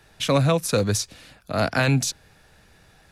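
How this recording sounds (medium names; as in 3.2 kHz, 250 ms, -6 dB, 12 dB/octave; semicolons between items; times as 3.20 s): noise floor -56 dBFS; spectral tilt -4.5 dB/octave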